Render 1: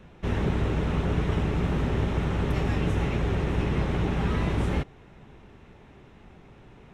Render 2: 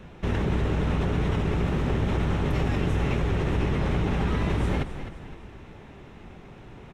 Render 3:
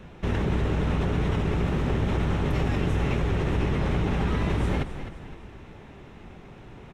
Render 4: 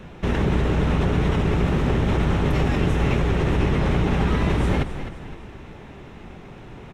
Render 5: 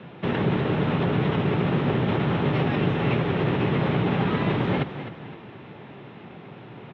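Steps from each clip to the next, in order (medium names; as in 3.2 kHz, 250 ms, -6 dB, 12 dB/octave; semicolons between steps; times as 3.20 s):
in parallel at -2.5 dB: compressor with a negative ratio -29 dBFS, ratio -0.5; on the sum: frequency-shifting echo 258 ms, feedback 42%, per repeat -40 Hz, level -10.5 dB; trim -2.5 dB
no audible change
hum notches 50/100 Hz; trim +5 dB
elliptic band-pass 120–3600 Hz, stop band 60 dB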